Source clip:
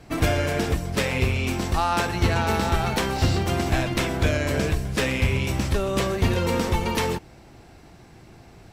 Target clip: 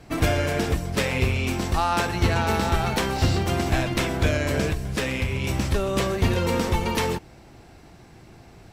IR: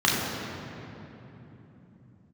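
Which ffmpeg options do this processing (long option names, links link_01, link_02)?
-filter_complex "[0:a]asettb=1/sr,asplit=3[link_01][link_02][link_03];[link_01]atrim=end=4.704[link_04];[link_02]atrim=start=4.7:end=5.44,asetpts=PTS-STARTPTS,afade=type=in:duration=0.004:curve=qsin,afade=type=out:start_time=0.736:duration=0.004:curve=qsin,acompressor=threshold=-22dB:ratio=4[link_05];[link_03]atrim=start=5.436[link_06];[link_04][link_05]acrossfade=duration=0.004:curve1=hsin:curve2=qsin[link_07];[link_07][link_06]acrossfade=duration=0.004:curve1=qsin:curve2=hsin"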